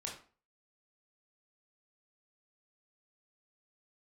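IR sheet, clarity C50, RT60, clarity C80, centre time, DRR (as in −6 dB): 6.5 dB, 0.40 s, 11.5 dB, 28 ms, −2.5 dB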